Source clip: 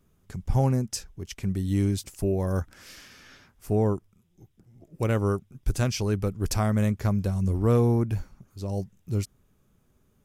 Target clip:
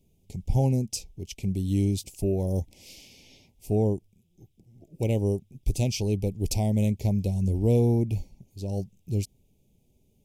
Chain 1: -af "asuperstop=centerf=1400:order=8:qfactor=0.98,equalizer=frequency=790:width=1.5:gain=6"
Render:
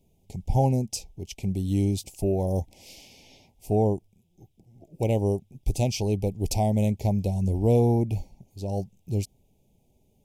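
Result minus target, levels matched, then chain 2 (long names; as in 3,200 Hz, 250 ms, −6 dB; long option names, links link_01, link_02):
1,000 Hz band +8.0 dB
-af "asuperstop=centerf=1400:order=8:qfactor=0.98,equalizer=frequency=790:width=1.5:gain=-3"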